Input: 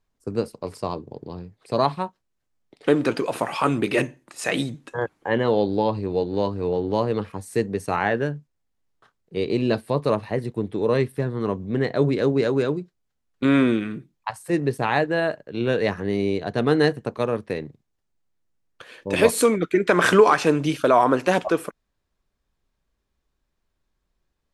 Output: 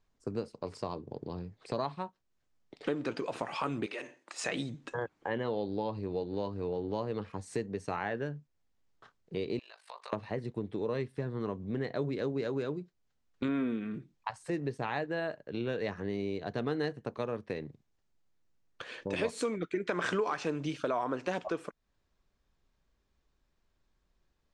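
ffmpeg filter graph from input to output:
-filter_complex "[0:a]asettb=1/sr,asplit=3[a][b][c];[a]atrim=end=3.864[d];[b]atrim=start=3.86:end=4.44,asetpts=PTS-STARTPTS,afade=t=in:d=0.004:c=qsin,afade=t=out:st=0.576:d=0.004:c=qsin,highpass=500,acompressor=threshold=-28dB:ratio=5:attack=3.2:release=140:knee=1:detection=peak[e];[c]atrim=start=4.436[f];[d][e]acrossfade=d=0.004:c1=hsin:c2=qsin[g];[g][f]acrossfade=d=0.004:c1=qsin:c2=hsin,asettb=1/sr,asplit=3[h][i][j];[h]atrim=end=9.594[k];[i]atrim=start=9.59:end=10.13,asetpts=PTS-STARTPTS,afade=t=in:d=0.004:c=qsin,afade=t=out:st=0.536:d=0.004:c=qsin,highpass=f=850:w=0.5412,highpass=f=850:w=1.3066,acompressor=threshold=-40dB:ratio=6:attack=3.2:release=140:knee=1:detection=peak,aeval=exprs='val(0)*sin(2*PI*25*n/s)':c=same[l];[j]atrim=start=10.126[m];[k][l]acrossfade=d=0.004:c1=hsin:c2=qsin[n];[n][m]acrossfade=d=0.004:c1=qsin:c2=hsin,asettb=1/sr,asplit=3[o][p][q];[o]atrim=end=13.484[r];[p]atrim=start=13.48:end=13.94,asetpts=PTS-STARTPTS,afade=t=in:d=0.004:c=qsin,afade=t=out:st=0.456:d=0.004:c=qsin,equalizer=f=7.5k:t=o:w=3:g=-9,aecho=1:1:4.4:0.44,atrim=end_sample=20286[s];[q]atrim=start=13.936[t];[r][s]acrossfade=d=0.004:c1=hsin:c2=qsin[u];[u][t]acrossfade=d=0.004:c1=qsin:c2=hsin,lowpass=f=7.6k:w=0.5412,lowpass=f=7.6k:w=1.3066,acompressor=threshold=-37dB:ratio=2.5"

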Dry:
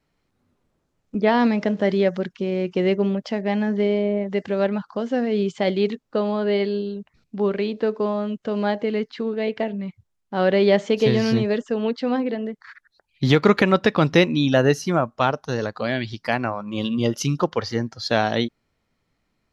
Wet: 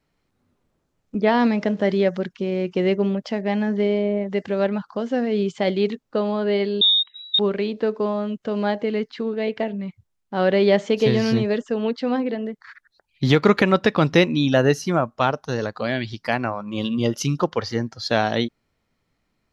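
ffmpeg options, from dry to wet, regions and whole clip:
-filter_complex "[0:a]asettb=1/sr,asplit=3[a][b][c];[a]atrim=end=6.814[d];[b]atrim=start=6.81:end=7.39,asetpts=PTS-STARTPTS,afade=t=in:d=0.004:c=qsin,afade=t=out:st=0.576:d=0.004:c=qsin,aemphasis=mode=reproduction:type=riaa,acontrast=48,lowpass=f=3.3k:t=q:w=0.5098,lowpass=f=3.3k:t=q:w=0.6013,lowpass=f=3.3k:t=q:w=0.9,lowpass=f=3.3k:t=q:w=2.563,afreqshift=-3900[e];[c]atrim=start=7.386[f];[d][e]acrossfade=d=0.004:c1=hsin:c2=qsin[g];[g][f]acrossfade=d=0.004:c1=qsin:c2=hsin"

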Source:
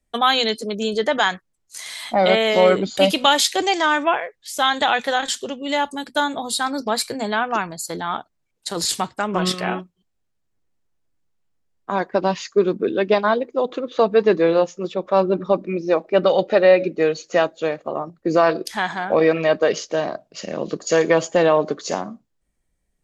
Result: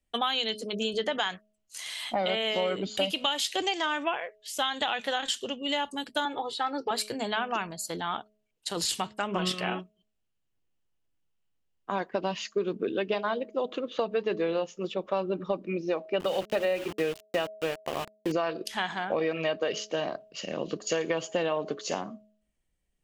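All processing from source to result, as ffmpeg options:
-filter_complex "[0:a]asettb=1/sr,asplit=3[a][b][c];[a]atrim=end=6.254[d];[b]atrim=start=6.25:end=6.91,asetpts=PTS-STARTPTS,afade=t=in:d=0.004:c=qsin,afade=t=out:st=0.656:d=0.004:c=qsin,highpass=150,lowpass=2.7k,aecho=1:1:2.3:0.92,atrim=end_sample=29106[e];[c]atrim=start=6.906[f];[d][e]acrossfade=d=0.004:c1=hsin:c2=qsin[g];[g][f]acrossfade=d=0.004:c1=qsin:c2=hsin,asettb=1/sr,asplit=3[h][i][j];[h]atrim=end=16.204[k];[i]atrim=start=16.2:end=18.32,asetpts=PTS-STARTPTS,afade=t=in:d=0.004:c=qsin,afade=t=out:st=2.116:d=0.004:c=qsin,lowshelf=f=160:g=4,bandreject=f=60:t=h:w=6,bandreject=f=120:t=h:w=6,bandreject=f=180:t=h:w=6,bandreject=f=240:t=h:w=6,bandreject=f=300:t=h:w=6,bandreject=f=360:t=h:w=6,bandreject=f=420:t=h:w=6,aeval=exprs='val(0)*gte(abs(val(0)),0.0501)':c=same[l];[j]atrim=start=18.316[m];[k][l]acrossfade=d=0.004:c1=hsin:c2=qsin[n];[n][m]acrossfade=d=0.004:c1=qsin:c2=hsin,equalizer=f=2.9k:w=3.9:g=9.5,bandreject=f=212.3:t=h:w=4,bandreject=f=424.6:t=h:w=4,bandreject=f=636.9:t=h:w=4,acompressor=threshold=-18dB:ratio=6,volume=-6.5dB"

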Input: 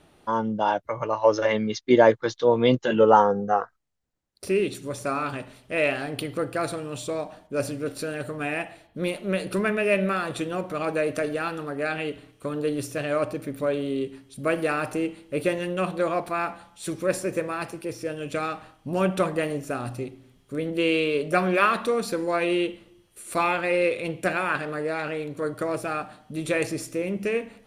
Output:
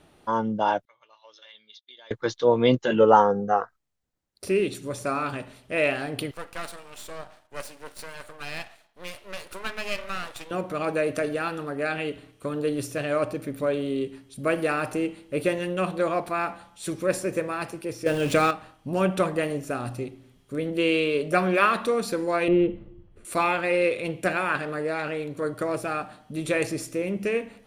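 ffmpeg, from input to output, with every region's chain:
-filter_complex "[0:a]asettb=1/sr,asplit=3[a][b][c];[a]atrim=end=0.854[d];[b]atrim=start=0.85:end=2.11,asetpts=PTS-STARTPTS,afade=t=in:d=0.004:c=qsin,afade=t=out:st=1.256:d=0.004:c=qsin,bandpass=f=3.5k:t=q:w=9,acompressor=threshold=-44dB:ratio=6:attack=3.2:release=140:knee=1:detection=peak[e];[c]atrim=start=2.106[f];[d][e]acrossfade=d=0.004:c1=hsin:c2=qsin[g];[g][f]acrossfade=d=0.004:c1=qsin:c2=hsin,asettb=1/sr,asplit=3[h][i][j];[h]atrim=end=6.314[k];[i]atrim=start=6.31:end=10.51,asetpts=PTS-STARTPTS,afade=t=in:d=0.004:c=qsin,afade=t=out:st=4.196:d=0.004:c=qsin,highpass=720,aeval=exprs='max(val(0),0)':c=same[l];[j]atrim=start=10.506[m];[k][l]acrossfade=d=0.004:c1=hsin:c2=qsin[n];[n][m]acrossfade=d=0.004:c1=qsin:c2=hsin,asettb=1/sr,asplit=3[o][p][q];[o]atrim=end=18.064[r];[p]atrim=start=18.06:end=18.51,asetpts=PTS-STARTPTS,afade=t=in:d=0.004:c=qsin,afade=t=out:st=0.446:d=0.004:c=qsin,aeval=exprs='val(0)+0.5*0.0106*sgn(val(0))':c=same,acontrast=80[s];[q]atrim=start=18.506[t];[r][s]acrossfade=d=0.004:c1=hsin:c2=qsin[u];[u][t]acrossfade=d=0.004:c1=qsin:c2=hsin,asettb=1/sr,asplit=3[v][w][x];[v]atrim=end=22.484[y];[w]atrim=start=22.48:end=23.25,asetpts=PTS-STARTPTS,afade=t=in:d=0.004:c=qsin,afade=t=out:st=0.766:d=0.004:c=qsin,lowpass=f=1.5k:p=1,aemphasis=mode=reproduction:type=riaa[z];[x]atrim=start=23.246[aa];[y][z]acrossfade=d=0.004:c1=hsin:c2=qsin[ab];[ab][aa]acrossfade=d=0.004:c1=qsin:c2=hsin"

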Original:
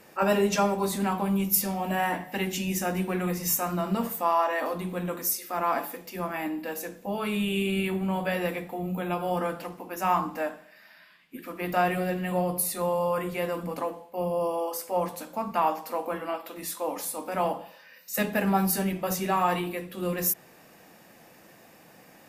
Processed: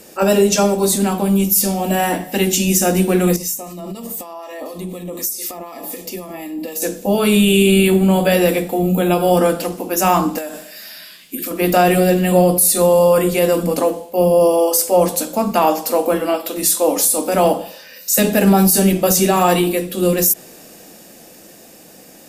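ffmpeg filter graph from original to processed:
-filter_complex "[0:a]asettb=1/sr,asplit=3[a][b][c];[a]atrim=end=3.364[d];[b]atrim=start=3.36:end=6.82,asetpts=PTS-STARTPTS,afade=t=in:d=0.004:c=qsin,afade=t=out:st=3.456:d=0.004:c=qsin,acompressor=threshold=-37dB:ratio=12:attack=3.2:release=140:knee=1:detection=peak,acrossover=split=1200[e][f];[e]aeval=exprs='val(0)*(1-0.5/2+0.5/2*cos(2*PI*4*n/s))':c=same[g];[f]aeval=exprs='val(0)*(1-0.5/2-0.5/2*cos(2*PI*4*n/s))':c=same[h];[g][h]amix=inputs=2:normalize=0,asuperstop=centerf=1500:order=20:qfactor=4.6[i];[c]atrim=start=6.816[j];[d][i]acrossfade=d=0.004:c1=hsin:c2=qsin[k];[k][j]acrossfade=d=0.004:c1=qsin:c2=hsin,asettb=1/sr,asplit=3[l][m][n];[l]atrim=end=10.384[o];[m]atrim=start=10.38:end=11.51,asetpts=PTS-STARTPTS,afade=t=in:d=0.004:c=qsin,afade=t=out:st=1.126:d=0.004:c=qsin,highshelf=f=3.5k:g=10,acompressor=threshold=-38dB:ratio=8:attack=3.2:release=140:knee=1:detection=peak[p];[n]atrim=start=11.506[q];[o][p]acrossfade=d=0.004:c1=hsin:c2=qsin[r];[r][q]acrossfade=d=0.004:c1=qsin:c2=hsin,equalizer=f=125:t=o:w=1:g=-9,equalizer=f=1k:t=o:w=1:g=-10,equalizer=f=2k:t=o:w=1:g=-8,equalizer=f=8k:t=o:w=1:g=5,dynaudnorm=f=140:g=31:m=5dB,alimiter=level_in=17dB:limit=-1dB:release=50:level=0:latency=1,volume=-3dB"

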